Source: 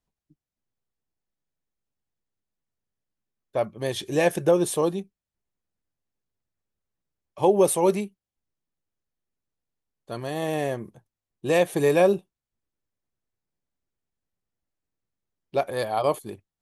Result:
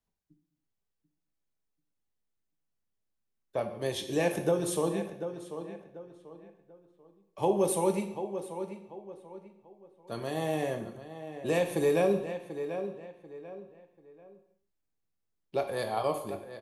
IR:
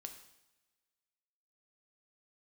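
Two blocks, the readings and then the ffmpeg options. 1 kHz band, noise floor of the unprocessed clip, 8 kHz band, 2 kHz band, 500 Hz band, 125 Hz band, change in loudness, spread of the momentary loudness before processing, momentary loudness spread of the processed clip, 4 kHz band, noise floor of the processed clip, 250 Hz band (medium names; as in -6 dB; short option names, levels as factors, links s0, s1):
-6.0 dB, under -85 dBFS, -6.0 dB, -6.5 dB, -6.0 dB, -4.5 dB, -7.5 dB, 16 LU, 19 LU, -5.0 dB, -82 dBFS, -5.0 dB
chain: -filter_complex "[0:a]asplit=2[s0][s1];[s1]adelay=739,lowpass=f=2900:p=1,volume=0.224,asplit=2[s2][s3];[s3]adelay=739,lowpass=f=2900:p=1,volume=0.32,asplit=2[s4][s5];[s5]adelay=739,lowpass=f=2900:p=1,volume=0.32[s6];[s0][s2][s4][s6]amix=inputs=4:normalize=0,acrossover=split=170[s7][s8];[s8]acompressor=threshold=0.0398:ratio=1.5[s9];[s7][s9]amix=inputs=2:normalize=0[s10];[1:a]atrim=start_sample=2205,afade=t=out:st=0.39:d=0.01,atrim=end_sample=17640[s11];[s10][s11]afir=irnorm=-1:irlink=0,volume=1.26"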